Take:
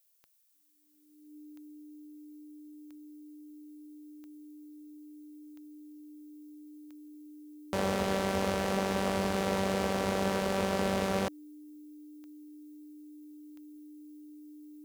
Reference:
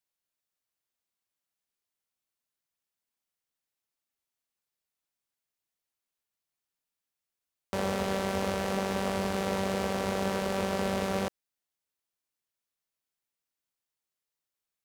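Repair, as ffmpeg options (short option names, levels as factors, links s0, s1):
-af "adeclick=t=4,bandreject=f=300:w=30,agate=range=0.0891:threshold=0.00794"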